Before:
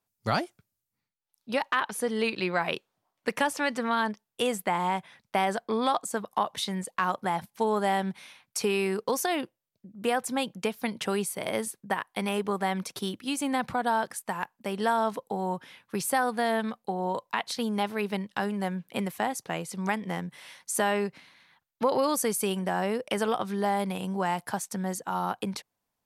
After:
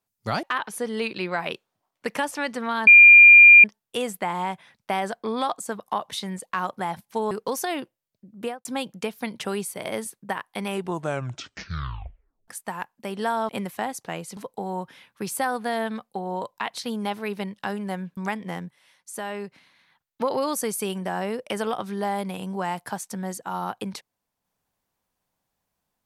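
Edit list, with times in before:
0.43–1.65 s: delete
4.09 s: add tone 2.4 kHz -6 dBFS 0.77 s
7.76–8.92 s: delete
10.00–10.26 s: studio fade out
12.29 s: tape stop 1.80 s
18.90–19.78 s: move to 15.10 s
20.32–21.83 s: fade in, from -15.5 dB

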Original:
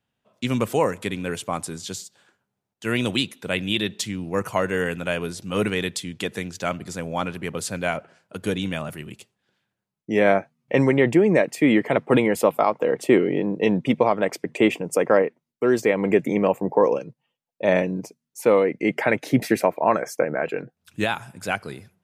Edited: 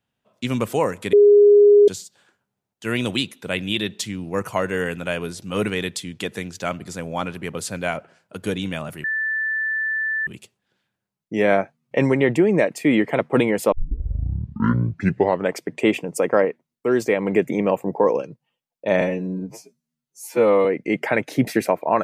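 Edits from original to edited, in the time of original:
1.13–1.88 s: bleep 411 Hz -8 dBFS
9.04 s: add tone 1.76 kHz -20.5 dBFS 1.23 s
12.49 s: tape start 1.83 s
17.78–18.60 s: stretch 2×

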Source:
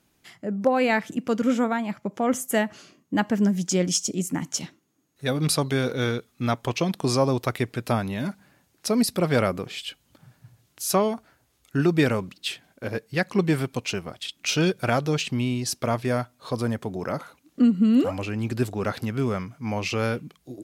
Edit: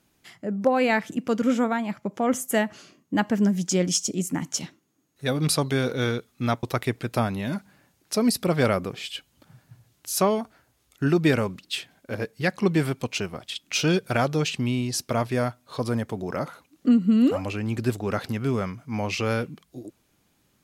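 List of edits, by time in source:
6.63–7.36 s: delete

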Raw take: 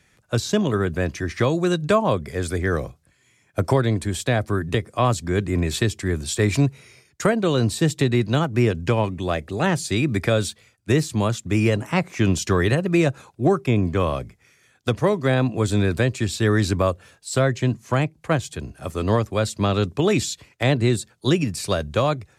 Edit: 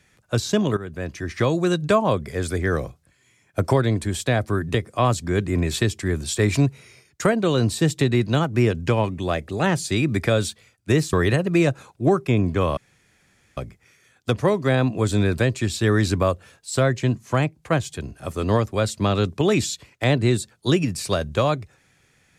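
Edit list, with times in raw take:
0.77–1.50 s: fade in, from -14 dB
11.13–12.52 s: delete
14.16 s: insert room tone 0.80 s

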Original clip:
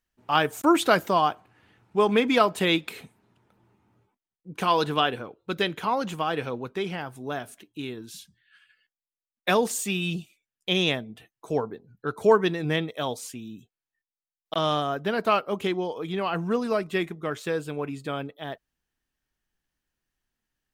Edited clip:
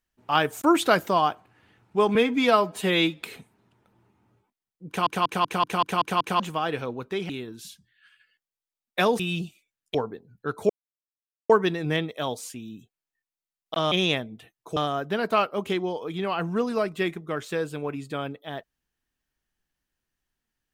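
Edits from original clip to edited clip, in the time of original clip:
2.15–2.86 s: stretch 1.5×
4.52 s: stutter in place 0.19 s, 8 plays
6.94–7.79 s: delete
9.69–9.94 s: delete
10.69–11.54 s: move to 14.71 s
12.29 s: insert silence 0.80 s

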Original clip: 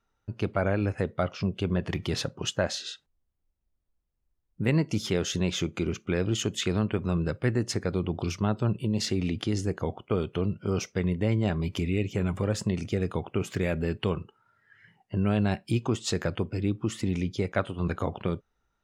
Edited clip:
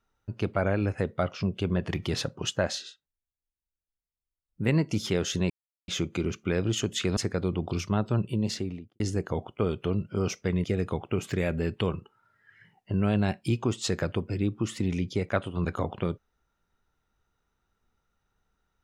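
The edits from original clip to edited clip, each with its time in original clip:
2.76–4.65 s: dip -16 dB, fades 0.18 s
5.50 s: insert silence 0.38 s
6.79–7.68 s: delete
8.88–9.51 s: studio fade out
11.15–12.87 s: delete

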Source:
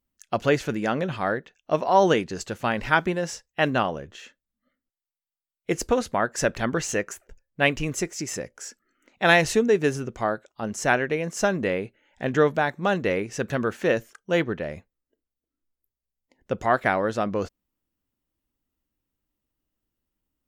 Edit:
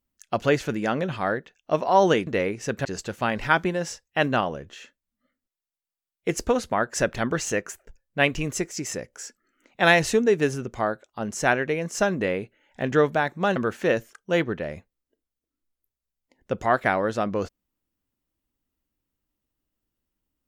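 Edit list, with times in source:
12.98–13.56 s: move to 2.27 s

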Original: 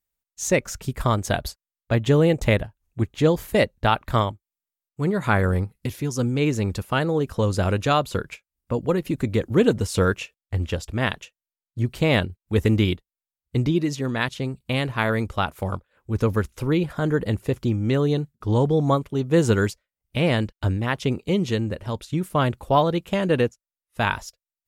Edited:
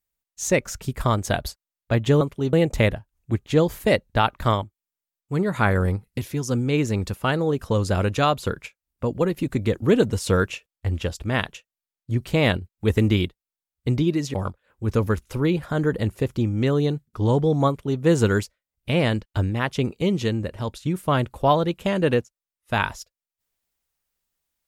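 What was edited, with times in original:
14.02–15.61 s: delete
18.95–19.27 s: copy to 2.21 s

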